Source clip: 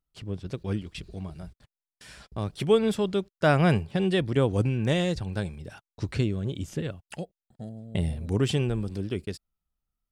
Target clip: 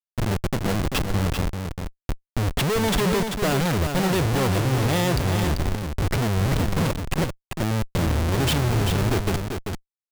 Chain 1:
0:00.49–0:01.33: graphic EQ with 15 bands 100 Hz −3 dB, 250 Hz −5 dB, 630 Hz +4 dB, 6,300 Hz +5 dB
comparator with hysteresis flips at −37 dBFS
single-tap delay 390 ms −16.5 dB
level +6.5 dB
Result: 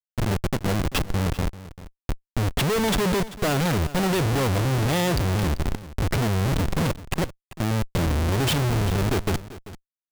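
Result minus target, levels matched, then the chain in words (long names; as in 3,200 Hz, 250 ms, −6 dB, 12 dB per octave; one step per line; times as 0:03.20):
echo-to-direct −10.5 dB
0:00.49–0:01.33: graphic EQ with 15 bands 100 Hz −3 dB, 250 Hz −5 dB, 630 Hz +4 dB, 6,300 Hz +5 dB
comparator with hysteresis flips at −37 dBFS
single-tap delay 390 ms −6 dB
level +6.5 dB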